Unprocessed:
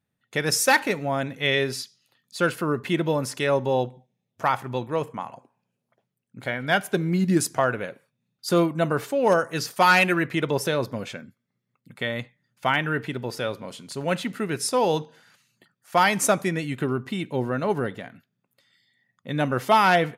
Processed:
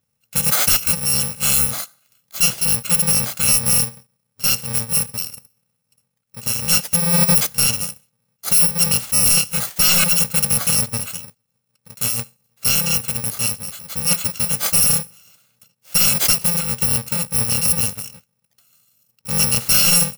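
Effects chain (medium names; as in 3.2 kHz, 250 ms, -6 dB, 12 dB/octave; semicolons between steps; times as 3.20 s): bit-reversed sample order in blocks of 128 samples; wavefolder -15.5 dBFS; trim +7 dB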